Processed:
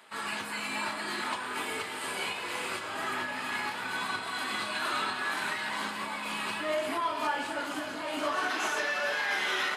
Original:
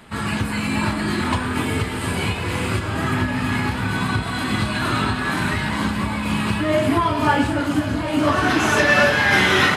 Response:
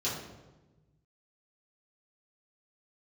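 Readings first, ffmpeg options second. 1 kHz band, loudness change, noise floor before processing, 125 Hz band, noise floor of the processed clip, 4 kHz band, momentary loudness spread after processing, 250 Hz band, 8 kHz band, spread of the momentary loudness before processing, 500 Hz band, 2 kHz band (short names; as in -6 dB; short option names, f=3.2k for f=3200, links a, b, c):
-10.0 dB, -12.0 dB, -26 dBFS, -31.0 dB, -38 dBFS, -9.0 dB, 5 LU, -20.5 dB, -8.5 dB, 8 LU, -12.5 dB, -11.0 dB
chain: -filter_complex "[0:a]highpass=550,alimiter=limit=-13.5dB:level=0:latency=1:release=201,asplit=2[a][b];[1:a]atrim=start_sample=2205[c];[b][c]afir=irnorm=-1:irlink=0,volume=-18.5dB[d];[a][d]amix=inputs=2:normalize=0,volume=-7.5dB"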